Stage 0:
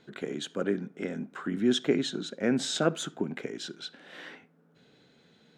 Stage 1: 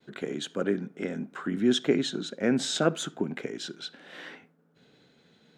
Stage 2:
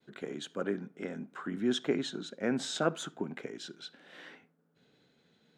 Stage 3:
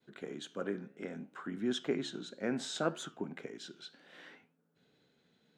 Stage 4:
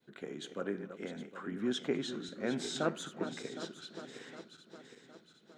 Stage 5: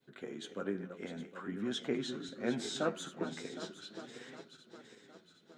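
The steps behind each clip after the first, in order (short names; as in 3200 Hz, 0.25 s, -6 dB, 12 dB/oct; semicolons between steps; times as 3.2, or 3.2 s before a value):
expander -59 dBFS; gain +1.5 dB
dynamic EQ 1000 Hz, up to +6 dB, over -43 dBFS, Q 1.1; gain -7 dB
flange 0.66 Hz, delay 7.5 ms, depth 9.2 ms, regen +85%; gain +1 dB
regenerating reverse delay 0.381 s, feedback 68%, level -10 dB
flange 0.45 Hz, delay 7.1 ms, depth 5.2 ms, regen +39%; gain +3 dB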